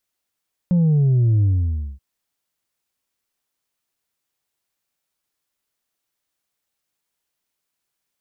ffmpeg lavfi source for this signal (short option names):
-f lavfi -i "aevalsrc='0.211*clip((1.28-t)/0.56,0,1)*tanh(1.33*sin(2*PI*180*1.28/log(65/180)*(exp(log(65/180)*t/1.28)-1)))/tanh(1.33)':d=1.28:s=44100"